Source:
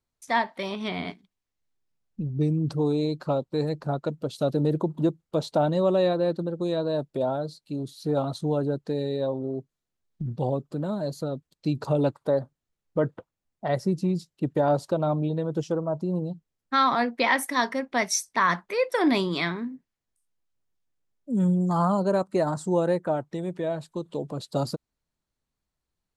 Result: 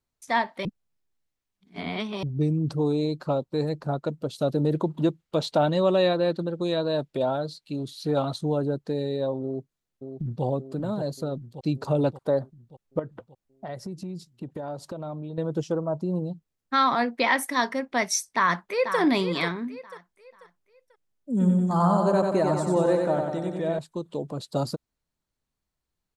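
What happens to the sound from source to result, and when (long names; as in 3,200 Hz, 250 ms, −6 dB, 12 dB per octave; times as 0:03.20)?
0:00.65–0:02.23: reverse
0:04.72–0:08.36: parametric band 2,700 Hz +7.5 dB 2 octaves
0:09.43–0:10.44: delay throw 580 ms, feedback 60%, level −7.5 dB
0:12.99–0:15.38: downward compressor 4 to 1, threshold −33 dBFS
0:18.28–0:18.99: delay throw 490 ms, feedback 35%, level −8.5 dB
0:21.31–0:23.79: repeating echo 93 ms, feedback 59%, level −4 dB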